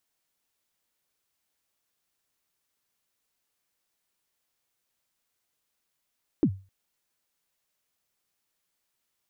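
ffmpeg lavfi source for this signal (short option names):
-f lavfi -i "aevalsrc='0.188*pow(10,-3*t/0.32)*sin(2*PI*(360*0.069/log(96/360)*(exp(log(96/360)*min(t,0.069)/0.069)-1)+96*max(t-0.069,0)))':d=0.26:s=44100"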